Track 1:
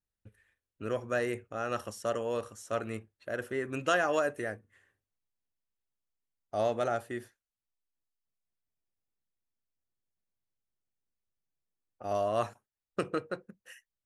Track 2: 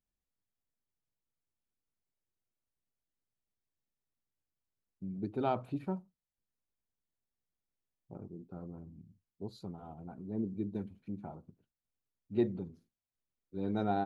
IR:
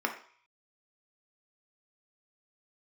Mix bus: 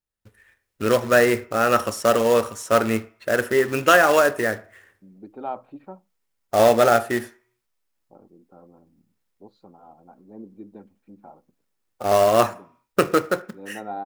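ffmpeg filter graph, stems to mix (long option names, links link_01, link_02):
-filter_complex "[0:a]acrusher=bits=3:mode=log:mix=0:aa=0.000001,volume=-0.5dB,asplit=2[link_01][link_02];[link_02]volume=-13.5dB[link_03];[1:a]bandpass=frequency=830:width_type=q:width=0.87:csg=0,aecho=1:1:3.7:0.3,volume=-10dB[link_04];[2:a]atrim=start_sample=2205[link_05];[link_03][link_05]afir=irnorm=-1:irlink=0[link_06];[link_01][link_04][link_06]amix=inputs=3:normalize=0,dynaudnorm=framelen=260:gausssize=3:maxgain=13dB"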